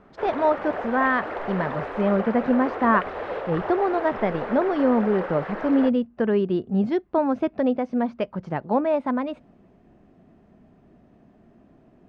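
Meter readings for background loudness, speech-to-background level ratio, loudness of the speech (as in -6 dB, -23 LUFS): -32.0 LUFS, 8.0 dB, -24.0 LUFS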